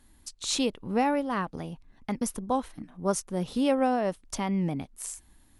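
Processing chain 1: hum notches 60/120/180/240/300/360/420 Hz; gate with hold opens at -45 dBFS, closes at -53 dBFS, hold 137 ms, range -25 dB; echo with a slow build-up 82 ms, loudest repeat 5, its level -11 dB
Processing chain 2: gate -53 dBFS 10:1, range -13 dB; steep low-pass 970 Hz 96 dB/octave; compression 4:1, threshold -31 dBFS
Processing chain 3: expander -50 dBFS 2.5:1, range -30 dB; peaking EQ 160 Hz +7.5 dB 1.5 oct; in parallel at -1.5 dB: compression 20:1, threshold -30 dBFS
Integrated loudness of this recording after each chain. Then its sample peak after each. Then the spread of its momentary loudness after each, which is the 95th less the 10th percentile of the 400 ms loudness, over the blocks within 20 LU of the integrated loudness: -28.0 LUFS, -36.5 LUFS, -24.5 LUFS; -12.0 dBFS, -21.0 dBFS, -9.0 dBFS; 6 LU, 8 LU, 12 LU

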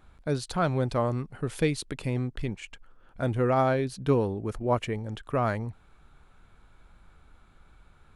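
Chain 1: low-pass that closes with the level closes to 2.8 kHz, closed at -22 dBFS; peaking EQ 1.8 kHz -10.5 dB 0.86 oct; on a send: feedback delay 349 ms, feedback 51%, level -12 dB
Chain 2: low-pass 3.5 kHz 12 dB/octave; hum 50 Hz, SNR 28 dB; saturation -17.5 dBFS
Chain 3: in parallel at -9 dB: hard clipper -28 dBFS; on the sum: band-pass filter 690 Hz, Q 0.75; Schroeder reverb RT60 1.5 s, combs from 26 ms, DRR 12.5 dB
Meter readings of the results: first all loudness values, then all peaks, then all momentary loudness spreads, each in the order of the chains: -29.5 LUFS, -30.0 LUFS, -30.0 LUFS; -12.0 dBFS, -18.0 dBFS, -11.5 dBFS; 17 LU, 9 LU, 13 LU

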